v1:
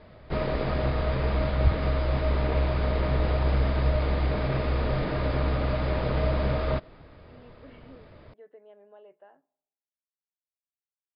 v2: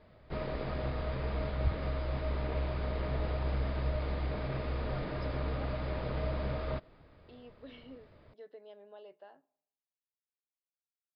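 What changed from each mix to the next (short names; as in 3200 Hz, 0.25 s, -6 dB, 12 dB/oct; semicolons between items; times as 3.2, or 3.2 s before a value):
speech: remove LPF 2500 Hz 24 dB/oct; background -9.0 dB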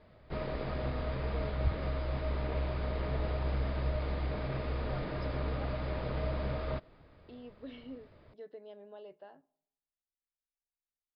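speech: remove HPF 420 Hz 6 dB/oct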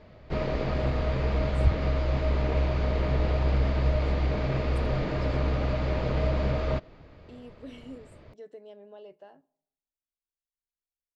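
background +5.5 dB; master: remove rippled Chebyshev low-pass 5100 Hz, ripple 3 dB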